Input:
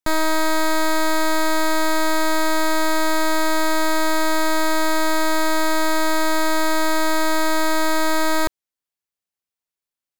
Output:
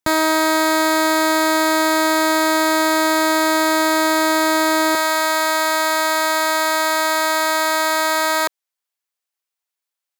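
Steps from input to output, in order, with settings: high-pass 72 Hz 12 dB/octave, from 4.95 s 570 Hz; trim +4.5 dB

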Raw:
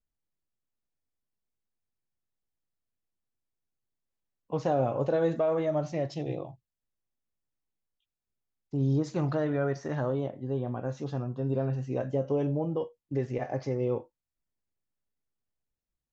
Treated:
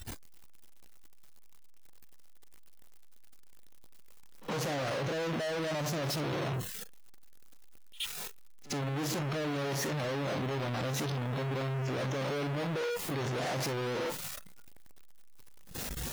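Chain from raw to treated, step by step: one-bit comparator; spectral noise reduction 15 dB; pre-echo 69 ms -20.5 dB

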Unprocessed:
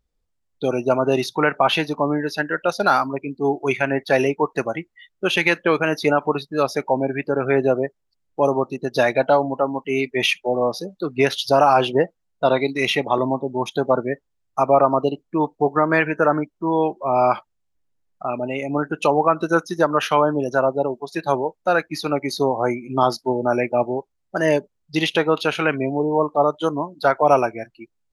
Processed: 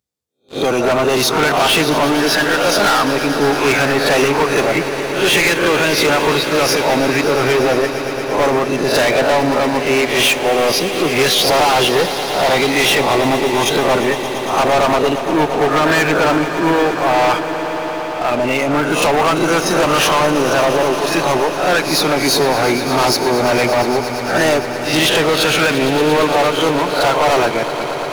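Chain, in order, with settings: reverse spectral sustain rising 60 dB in 0.33 s; high-pass 84 Hz 24 dB/octave; treble shelf 3.8 kHz +10 dB; waveshaping leveller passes 3; saturation -11.5 dBFS, distortion -11 dB; echo with a slow build-up 115 ms, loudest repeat 5, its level -15 dB

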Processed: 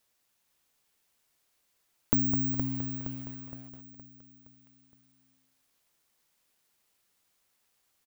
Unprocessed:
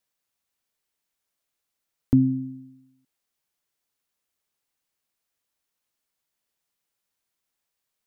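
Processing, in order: hum notches 60/120/180/240 Hz; compression 10:1, threshold -31 dBFS, peak gain reduction 17 dB; feedback delay 467 ms, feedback 48%, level -6.5 dB; careless resampling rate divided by 2×, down none, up zero stuff; bit-crushed delay 207 ms, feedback 35%, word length 8-bit, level -7 dB; trim +4 dB

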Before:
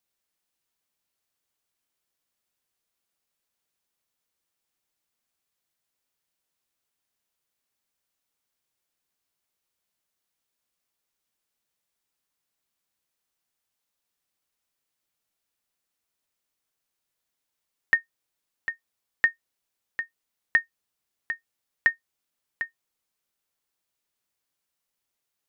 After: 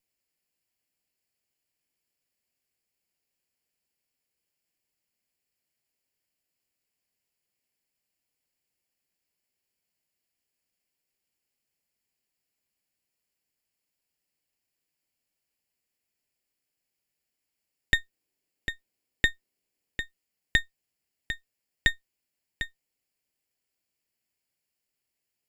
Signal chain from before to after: comb filter that takes the minimum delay 0.41 ms; 17.95–20.03 s: peaking EQ 340 Hz +6 dB 1.4 oct

